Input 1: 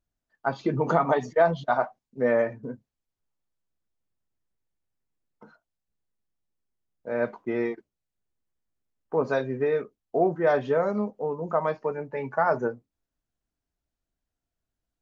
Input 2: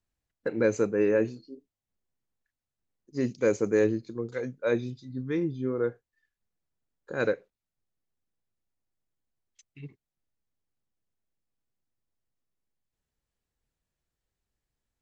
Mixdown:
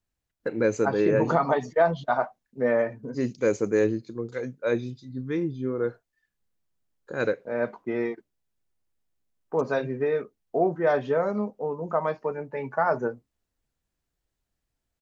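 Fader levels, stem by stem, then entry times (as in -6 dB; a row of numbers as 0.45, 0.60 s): -0.5, +1.0 dB; 0.40, 0.00 s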